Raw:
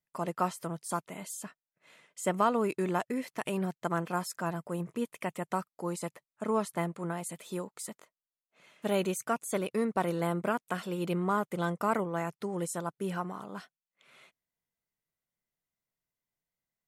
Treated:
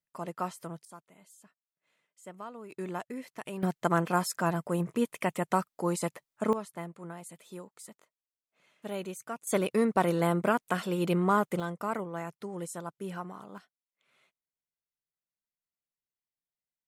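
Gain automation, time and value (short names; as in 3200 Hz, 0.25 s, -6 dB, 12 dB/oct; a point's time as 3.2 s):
-4 dB
from 0.85 s -16.5 dB
from 2.71 s -6 dB
from 3.63 s +5 dB
from 6.53 s -7.5 dB
from 9.47 s +4 dB
from 11.6 s -4 dB
from 13.58 s -11 dB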